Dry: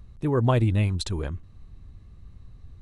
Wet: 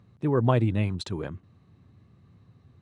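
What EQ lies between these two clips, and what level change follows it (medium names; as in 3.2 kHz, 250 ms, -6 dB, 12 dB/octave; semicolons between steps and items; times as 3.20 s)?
high-pass 110 Hz 24 dB/octave; low-pass 2.9 kHz 6 dB/octave; 0.0 dB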